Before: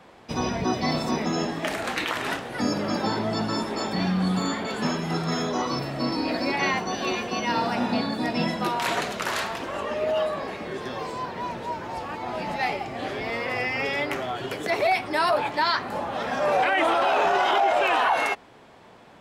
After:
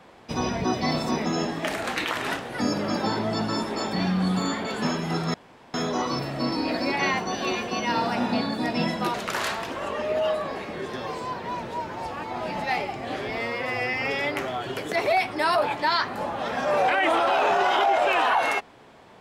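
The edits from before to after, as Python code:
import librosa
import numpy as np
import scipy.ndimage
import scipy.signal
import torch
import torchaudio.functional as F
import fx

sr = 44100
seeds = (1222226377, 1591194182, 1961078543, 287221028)

y = fx.edit(x, sr, fx.insert_room_tone(at_s=5.34, length_s=0.4),
    fx.cut(start_s=8.74, length_s=0.32),
    fx.stretch_span(start_s=13.33, length_s=0.35, factor=1.5), tone=tone)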